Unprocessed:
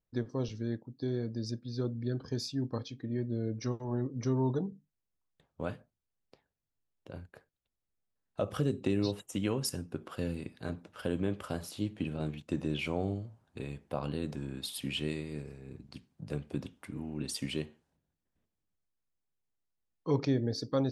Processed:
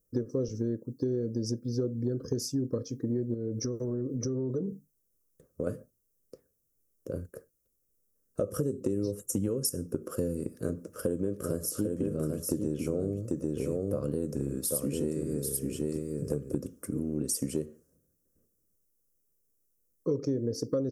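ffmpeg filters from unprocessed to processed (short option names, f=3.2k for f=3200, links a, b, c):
-filter_complex "[0:a]asettb=1/sr,asplit=3[a][b][c];[a]atrim=end=3.344[d];[b]atrim=start=3.34:end=5.67,asetpts=PTS-STARTPTS,afade=t=in:d=0.004:c=qsin,afade=t=out:st=2.326:d=0.004:c=qsin,acompressor=threshold=-36dB:ratio=6:attack=3.2:release=140:knee=1:detection=peak[e];[c]atrim=start=5.666[f];[d][e]acrossfade=d=0.004:c1=hsin:c2=qsin[g];[g][f]acrossfade=d=0.004:c1=qsin:c2=hsin,asettb=1/sr,asplit=3[h][i][j];[h]atrim=end=8.844[k];[i]atrim=start=8.84:end=9.49,asetpts=PTS-STARTPTS,afade=t=in:d=0.004:c=qsin,afade=t=out:st=0.646:d=0.004:c=qsin,asubboost=boost=7.5:cutoff=220[l];[j]atrim=start=9.486[m];[k][l]acrossfade=d=0.004:c1=hsin:c2=qsin[n];[n][m]acrossfade=d=0.004:c1=qsin:c2=hsin,asplit=3[o][p][q];[o]afade=t=out:st=11.31:d=0.02[r];[p]aecho=1:1:793:0.596,afade=t=in:st=11.31:d=0.02,afade=t=out:st=16.6:d=0.02[s];[q]afade=t=in:st=16.6:d=0.02[t];[r][s][t]amix=inputs=3:normalize=0,firequalizer=gain_entry='entry(130,0);entry(510,8);entry(810,-21);entry(1200,-4);entry(2100,-16);entry(3800,-20);entry(5500,4);entry(12000,13)':delay=0.05:min_phase=1,acompressor=threshold=-34dB:ratio=6,volume=7dB"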